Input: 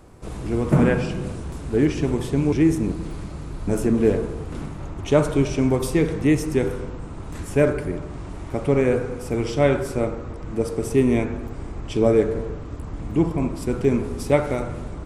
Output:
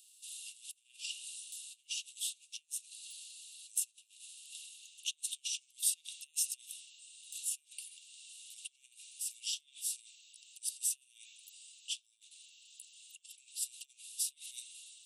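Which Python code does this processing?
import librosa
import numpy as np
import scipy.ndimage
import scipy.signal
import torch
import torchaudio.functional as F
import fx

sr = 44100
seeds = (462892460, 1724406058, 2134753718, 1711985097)

y = fx.high_shelf(x, sr, hz=5500.0, db=5.0)
y = fx.over_compress(y, sr, threshold_db=-25.0, ratio=-0.5)
y = scipy.signal.sosfilt(scipy.signal.cheby1(6, 6, 2700.0, 'highpass', fs=sr, output='sos'), y)
y = y * 10.0 ** (-1.0 / 20.0)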